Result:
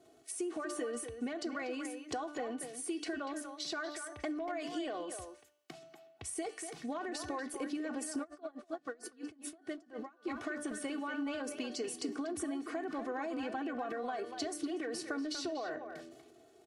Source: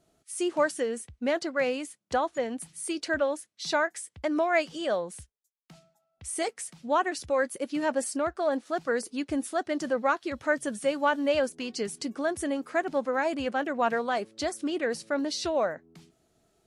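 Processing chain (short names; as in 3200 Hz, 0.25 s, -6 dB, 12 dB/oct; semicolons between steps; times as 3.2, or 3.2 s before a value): HPF 200 Hz 12 dB/oct; tilt -1.5 dB/oct; notch 910 Hz, Q 12; comb 2.7 ms, depth 81%; de-hum 295.9 Hz, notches 21; limiter -22.5 dBFS, peak gain reduction 12.5 dB; compressor 2:1, threshold -50 dBFS, peak gain reduction 13 dB; transient shaper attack +4 dB, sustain +8 dB; speakerphone echo 0.24 s, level -7 dB; plate-style reverb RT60 0.51 s, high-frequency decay 1×, DRR 17 dB; 8.22–10.25 dB-linear tremolo 9 Hz -> 2.8 Hz, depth 28 dB; gain +2 dB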